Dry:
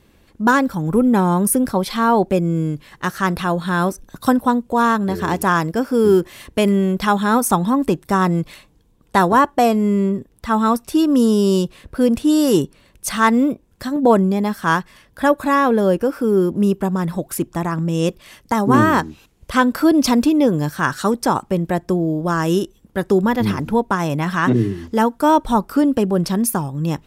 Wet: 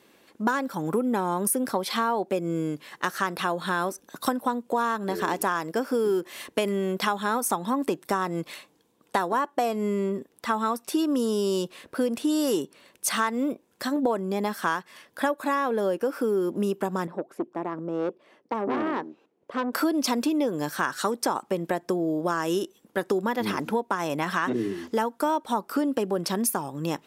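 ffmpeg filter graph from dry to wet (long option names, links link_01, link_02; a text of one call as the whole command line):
ffmpeg -i in.wav -filter_complex "[0:a]asettb=1/sr,asplit=3[link_01][link_02][link_03];[link_01]atrim=end=17.074[link_04];[link_02]atrim=start=17.07:end=19.73,asetpts=PTS-STARTPTS,afade=type=in:duration=0.004:curve=qsin,afade=type=out:start_time=2.656:duration=0.004:curve=qsin,bandpass=frequency=390:width_type=q:width=1,aeval=exprs='(tanh(7.94*val(0)+0.45)-tanh(0.45))/7.94':channel_layout=same[link_05];[link_03]atrim=start=19.726[link_06];[link_04][link_05]acrossfade=duration=0.004:curve1=hsin:curve2=qsin[link_07];[link_07][link_06]acrossfade=duration=0.004:curve1=qsin:curve2=hsin,highpass=310,acompressor=threshold=-22dB:ratio=6" out.wav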